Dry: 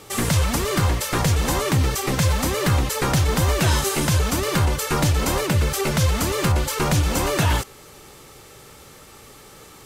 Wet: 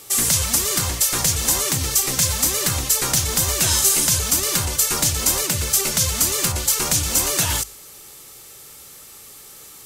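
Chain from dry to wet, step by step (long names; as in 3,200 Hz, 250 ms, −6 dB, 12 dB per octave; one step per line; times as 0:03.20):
first-order pre-emphasis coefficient 0.8
mains-hum notches 50/100/150/200 Hz
dynamic equaliser 6,500 Hz, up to +5 dB, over −43 dBFS, Q 0.95
level +7.5 dB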